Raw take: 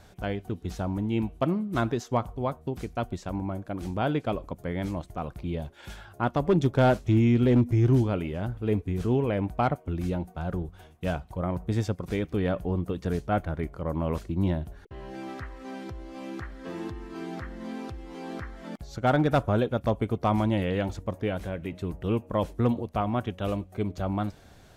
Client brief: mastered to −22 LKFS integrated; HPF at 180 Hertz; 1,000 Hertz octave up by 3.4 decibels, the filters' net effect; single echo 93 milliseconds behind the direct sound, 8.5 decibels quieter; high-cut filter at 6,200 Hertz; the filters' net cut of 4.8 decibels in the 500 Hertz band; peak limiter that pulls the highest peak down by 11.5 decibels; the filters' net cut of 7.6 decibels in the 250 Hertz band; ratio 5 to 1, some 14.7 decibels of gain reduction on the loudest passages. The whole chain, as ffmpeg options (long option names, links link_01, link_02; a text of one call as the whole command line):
ffmpeg -i in.wav -af "highpass=180,lowpass=6200,equalizer=frequency=250:width_type=o:gain=-6.5,equalizer=frequency=500:width_type=o:gain=-7,equalizer=frequency=1000:width_type=o:gain=8,acompressor=threshold=-35dB:ratio=5,alimiter=level_in=6.5dB:limit=-24dB:level=0:latency=1,volume=-6.5dB,aecho=1:1:93:0.376,volume=21dB" out.wav